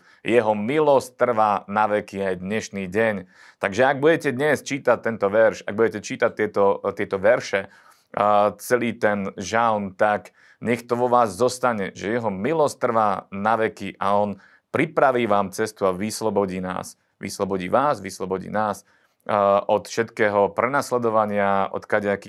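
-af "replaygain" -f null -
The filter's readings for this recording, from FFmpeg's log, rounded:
track_gain = +1.6 dB
track_peak = 0.500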